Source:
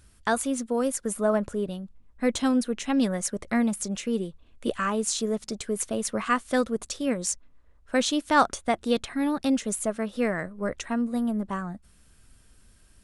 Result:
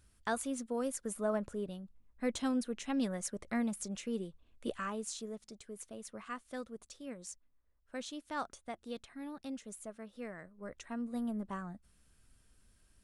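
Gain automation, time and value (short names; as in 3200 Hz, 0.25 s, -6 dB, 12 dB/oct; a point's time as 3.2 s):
4.67 s -10 dB
5.55 s -18.5 dB
10.49 s -18.5 dB
11.2 s -10 dB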